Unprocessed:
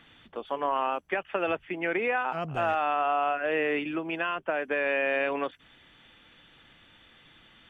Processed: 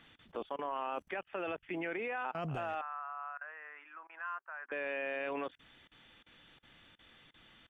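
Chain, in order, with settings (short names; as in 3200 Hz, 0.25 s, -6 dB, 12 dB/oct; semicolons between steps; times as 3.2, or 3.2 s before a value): tremolo 2.8 Hz, depth 85%; level quantiser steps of 24 dB; 2.81–4.72 Butterworth band-pass 1300 Hz, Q 1.7; gain +10.5 dB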